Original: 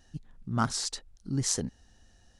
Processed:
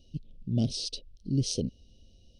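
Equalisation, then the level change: polynomial smoothing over 15 samples; elliptic band-stop 570–2800 Hz, stop band 40 dB; +3.5 dB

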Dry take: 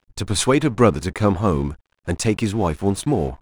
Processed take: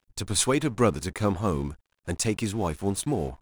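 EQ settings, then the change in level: high shelf 5200 Hz +9 dB; -7.5 dB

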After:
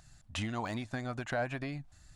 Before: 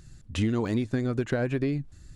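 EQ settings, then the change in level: resonant low shelf 550 Hz -7.5 dB, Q 3; -2.5 dB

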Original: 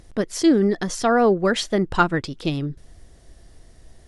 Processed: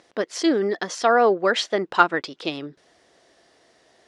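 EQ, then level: BPF 440–5300 Hz; +2.5 dB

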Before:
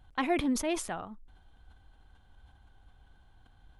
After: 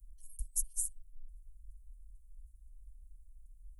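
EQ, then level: inverse Chebyshev band-stop 170–830 Hz, stop band 70 dB; inverse Chebyshev band-stop 620–4000 Hz, stop band 50 dB; +8.0 dB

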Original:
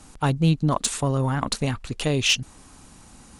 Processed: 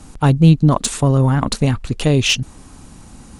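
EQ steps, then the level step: low shelf 480 Hz +7 dB; +3.5 dB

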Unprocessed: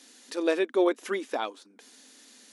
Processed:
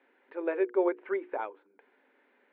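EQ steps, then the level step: air absorption 410 m; speaker cabinet 320–2700 Hz, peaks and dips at 390 Hz +10 dB, 560 Hz +6 dB, 900 Hz +9 dB, 1500 Hz +7 dB, 2200 Hz +7 dB; notches 60/120/180/240/300/360/420/480 Hz; -8.0 dB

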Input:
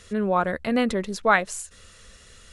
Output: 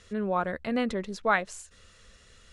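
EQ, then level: Bessel low-pass 6900 Hz, order 2; -5.5 dB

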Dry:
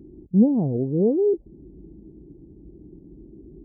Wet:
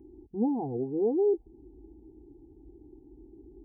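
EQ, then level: bell 800 Hz +12.5 dB 0.48 oct; notch 550 Hz, Q 17; fixed phaser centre 890 Hz, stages 8; -5.0 dB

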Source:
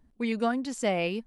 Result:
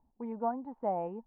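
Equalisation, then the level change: ladder low-pass 930 Hz, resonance 80%; +2.0 dB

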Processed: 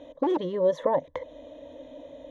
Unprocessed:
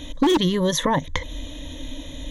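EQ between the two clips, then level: band-pass 580 Hz, Q 3.5; +4.5 dB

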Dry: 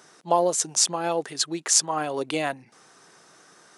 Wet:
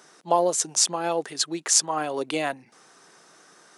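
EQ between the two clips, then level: HPF 150 Hz; 0.0 dB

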